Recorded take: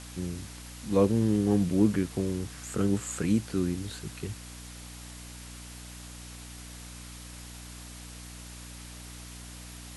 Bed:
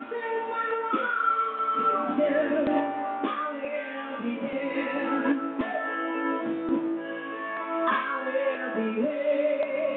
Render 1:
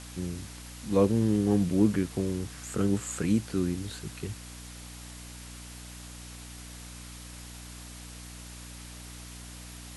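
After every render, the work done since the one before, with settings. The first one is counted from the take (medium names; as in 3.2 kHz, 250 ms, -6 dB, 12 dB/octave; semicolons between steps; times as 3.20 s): no audible change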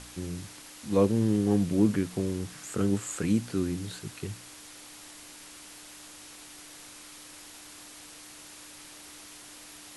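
de-hum 60 Hz, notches 4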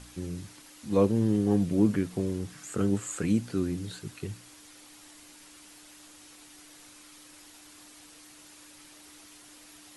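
noise reduction 6 dB, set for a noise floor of -48 dBFS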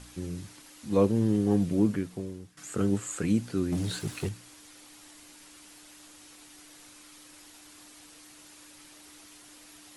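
1.70–2.57 s: fade out, to -17.5 dB; 3.72–4.29 s: waveshaping leveller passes 2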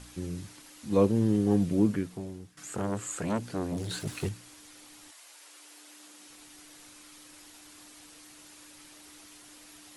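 2.13–4.07 s: transformer saturation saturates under 810 Hz; 5.10–6.28 s: high-pass 650 Hz -> 160 Hz 24 dB/octave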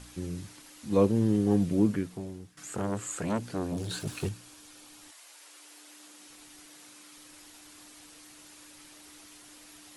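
3.58–5.02 s: band-stop 2 kHz, Q 10; 6.66–7.17 s: high-pass 130 Hz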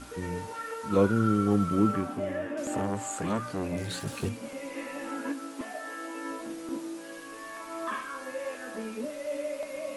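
add bed -9 dB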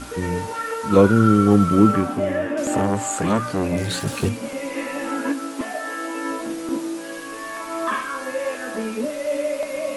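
trim +10 dB; peak limiter -2 dBFS, peak gain reduction 1.5 dB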